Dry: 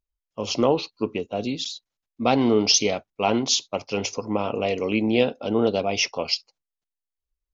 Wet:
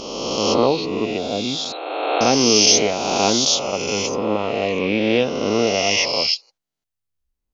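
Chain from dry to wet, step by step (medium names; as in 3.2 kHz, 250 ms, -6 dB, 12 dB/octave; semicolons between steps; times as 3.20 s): reverse spectral sustain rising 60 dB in 1.91 s; 1.72–2.21 s: brick-wall FIR band-pass 290–4300 Hz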